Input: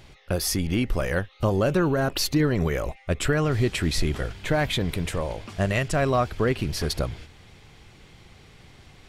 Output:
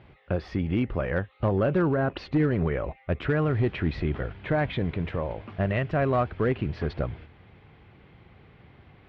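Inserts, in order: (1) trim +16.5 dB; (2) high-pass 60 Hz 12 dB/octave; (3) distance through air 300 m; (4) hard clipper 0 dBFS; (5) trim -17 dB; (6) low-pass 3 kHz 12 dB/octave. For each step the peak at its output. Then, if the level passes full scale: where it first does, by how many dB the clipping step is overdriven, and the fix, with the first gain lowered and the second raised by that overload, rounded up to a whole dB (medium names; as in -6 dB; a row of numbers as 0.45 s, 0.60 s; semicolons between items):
+6.0 dBFS, +5.5 dBFS, +5.0 dBFS, 0.0 dBFS, -17.0 dBFS, -16.5 dBFS; step 1, 5.0 dB; step 1 +11.5 dB, step 5 -12 dB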